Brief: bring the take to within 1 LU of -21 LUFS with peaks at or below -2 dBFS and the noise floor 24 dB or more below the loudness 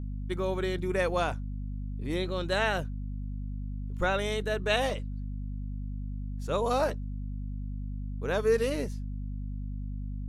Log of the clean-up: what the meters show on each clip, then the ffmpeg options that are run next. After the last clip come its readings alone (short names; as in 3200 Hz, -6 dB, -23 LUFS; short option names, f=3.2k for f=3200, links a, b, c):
hum 50 Hz; harmonics up to 250 Hz; hum level -33 dBFS; loudness -32.0 LUFS; peak -14.0 dBFS; loudness target -21.0 LUFS
-> -af "bandreject=f=50:t=h:w=4,bandreject=f=100:t=h:w=4,bandreject=f=150:t=h:w=4,bandreject=f=200:t=h:w=4,bandreject=f=250:t=h:w=4"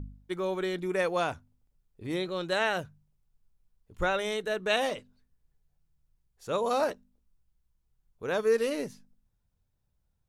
hum none; loudness -30.5 LUFS; peak -14.5 dBFS; loudness target -21.0 LUFS
-> -af "volume=9.5dB"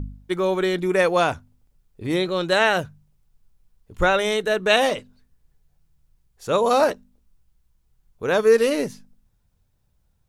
loudness -21.0 LUFS; peak -5.0 dBFS; noise floor -67 dBFS